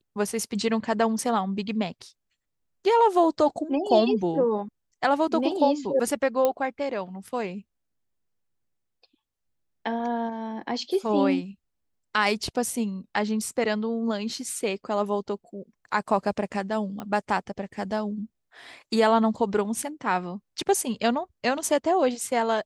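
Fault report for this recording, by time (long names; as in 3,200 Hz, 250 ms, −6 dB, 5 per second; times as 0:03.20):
0:06.45: click −10 dBFS
0:17.00: click −21 dBFS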